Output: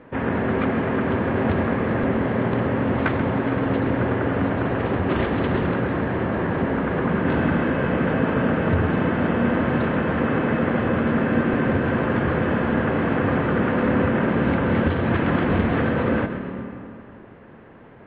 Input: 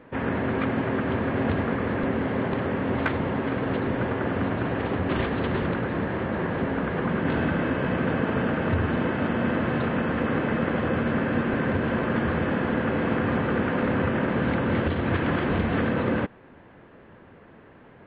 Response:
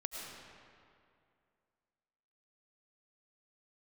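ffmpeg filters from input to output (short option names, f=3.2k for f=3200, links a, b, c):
-filter_complex "[0:a]aemphasis=mode=reproduction:type=50fm,asplit=2[a][b];[1:a]atrim=start_sample=2205,adelay=133[c];[b][c]afir=irnorm=-1:irlink=0,volume=-8dB[d];[a][d]amix=inputs=2:normalize=0,volume=3dB"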